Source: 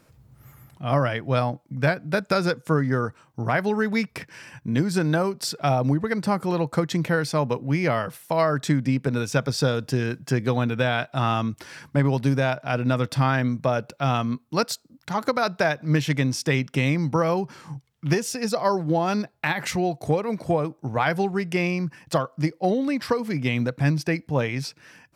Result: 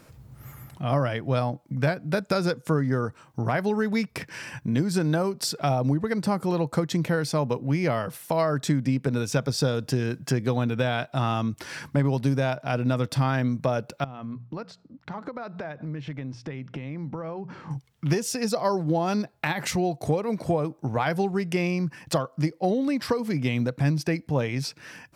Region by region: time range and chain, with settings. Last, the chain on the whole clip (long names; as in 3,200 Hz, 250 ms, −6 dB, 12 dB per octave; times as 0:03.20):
0:14.04–0:17.71: mains-hum notches 60/120/180 Hz + downward compressor 5 to 1, threshold −35 dBFS + head-to-tape spacing loss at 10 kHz 30 dB
whole clip: dynamic equaliser 1,800 Hz, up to −4 dB, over −36 dBFS, Q 0.7; downward compressor 1.5 to 1, threshold −38 dBFS; level +5.5 dB